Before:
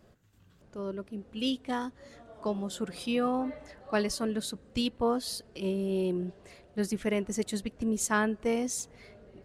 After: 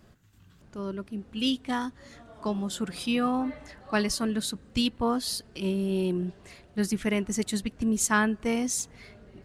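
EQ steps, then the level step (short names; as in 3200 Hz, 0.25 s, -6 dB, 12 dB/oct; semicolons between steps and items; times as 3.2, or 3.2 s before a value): bell 520 Hz -7.5 dB 1 oct; +5.0 dB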